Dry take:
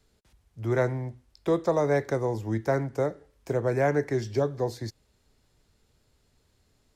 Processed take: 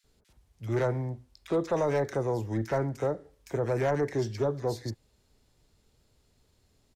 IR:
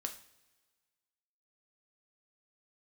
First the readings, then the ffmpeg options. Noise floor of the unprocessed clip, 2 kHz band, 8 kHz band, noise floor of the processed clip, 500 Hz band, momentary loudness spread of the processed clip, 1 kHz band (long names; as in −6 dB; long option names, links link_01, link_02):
−69 dBFS, −4.5 dB, −1.0 dB, −69 dBFS, −2.5 dB, 11 LU, −2.5 dB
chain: -filter_complex "[0:a]asoftclip=type=tanh:threshold=-20dB,acrossover=split=1600[link_01][link_02];[link_01]adelay=40[link_03];[link_03][link_02]amix=inputs=2:normalize=0"